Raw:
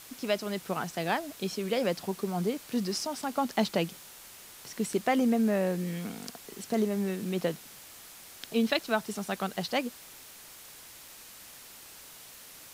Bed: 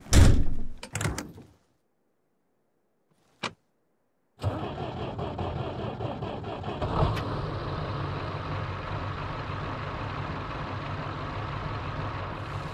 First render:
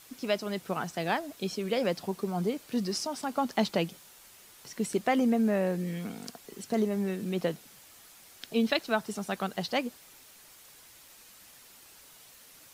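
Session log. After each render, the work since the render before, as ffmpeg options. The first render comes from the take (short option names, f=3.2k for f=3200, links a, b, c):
-af "afftdn=nr=6:nf=-50"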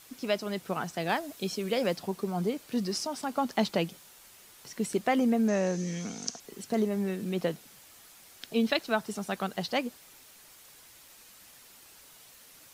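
-filter_complex "[0:a]asettb=1/sr,asplit=3[a][b][c];[a]atrim=end=1.094[d];[b]atrim=start=1.09:end=1.96,asetpts=PTS-STARTPTS,afade=t=in:d=0.004:c=qsin,afade=t=out:st=0.866:d=0.004:c=qsin,highshelf=f=4.9k:g=4[e];[c]atrim=start=1.956[f];[d][e]acrossfade=d=0.004:c1=hsin:c2=qsin[g];[g][f]acrossfade=d=0.004:c1=qsin:c2=hsin,asettb=1/sr,asplit=3[h][i][j];[h]atrim=end=5.484[k];[i]atrim=start=5.48:end=6.4,asetpts=PTS-STARTPTS,afade=t=in:d=0.004:c=qsin,afade=t=out:st=0.916:d=0.004:c=qsin,lowpass=f=6.2k:t=q:w=9.6[l];[j]atrim=start=6.396[m];[k][l]acrossfade=d=0.004:c1=hsin:c2=qsin[n];[n][m]acrossfade=d=0.004:c1=qsin:c2=hsin"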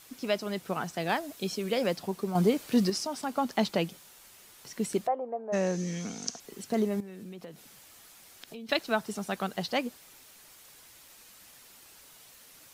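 -filter_complex "[0:a]asettb=1/sr,asplit=3[a][b][c];[a]atrim=end=2.354[d];[b]atrim=start=2.35:end=2.9,asetpts=PTS-STARTPTS,afade=t=in:d=0.004:c=qsin,afade=t=out:st=0.546:d=0.004:c=qsin,acontrast=52[e];[c]atrim=start=2.896[f];[d][e]acrossfade=d=0.004:c1=hsin:c2=qsin[g];[g][f]acrossfade=d=0.004:c1=qsin:c2=hsin,asplit=3[h][i][j];[h]afade=t=out:st=5.06:d=0.02[k];[i]asuperpass=centerf=700:order=4:qfactor=1.4,afade=t=in:st=5.06:d=0.02,afade=t=out:st=5.52:d=0.02[l];[j]afade=t=in:st=5.52:d=0.02[m];[k][l][m]amix=inputs=3:normalize=0,asettb=1/sr,asplit=3[n][o][p];[n]atrim=end=7.004[q];[o]atrim=start=7:end=8.69,asetpts=PTS-STARTPTS,afade=t=in:d=0.004:c=qsin,afade=t=out:st=1.686:d=0.004:c=qsin,acompressor=threshold=-41dB:ratio=6:attack=3.2:release=140:knee=1:detection=peak[r];[p]atrim=start=8.686[s];[q][r]acrossfade=d=0.004:c1=hsin:c2=qsin[t];[t][s]acrossfade=d=0.004:c1=qsin:c2=hsin"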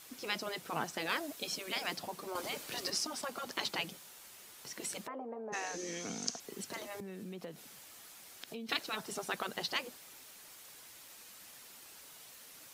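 -af "afftfilt=real='re*lt(hypot(re,im),0.126)':imag='im*lt(hypot(re,im),0.126)':win_size=1024:overlap=0.75,lowshelf=f=86:g=-10.5"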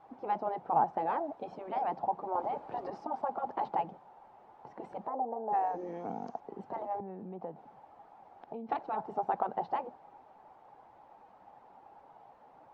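-af "lowpass=f=820:t=q:w=7.1"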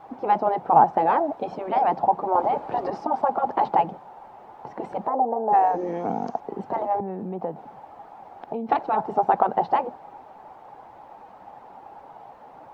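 -af "volume=12dB"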